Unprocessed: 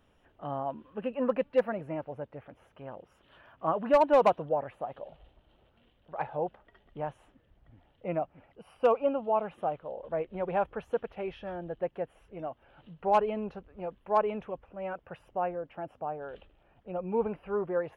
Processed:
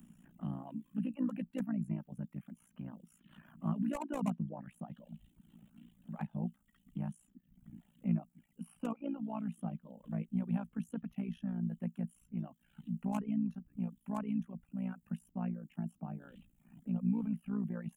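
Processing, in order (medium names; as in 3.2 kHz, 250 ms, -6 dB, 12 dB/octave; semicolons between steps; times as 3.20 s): reverb removal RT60 0.73 s; FFT filter 110 Hz 0 dB, 170 Hz +11 dB, 430 Hz -29 dB, 640 Hz -24 dB, 2.9 kHz -14 dB, 4.8 kHz -17 dB, 7.3 kHz +6 dB; AM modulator 58 Hz, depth 70%; resonant low shelf 150 Hz -13 dB, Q 1.5; three bands compressed up and down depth 40%; trim +7.5 dB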